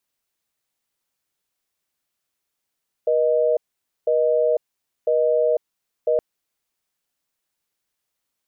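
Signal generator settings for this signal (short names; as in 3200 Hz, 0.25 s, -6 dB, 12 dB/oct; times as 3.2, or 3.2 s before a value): call progress tone busy tone, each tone -18.5 dBFS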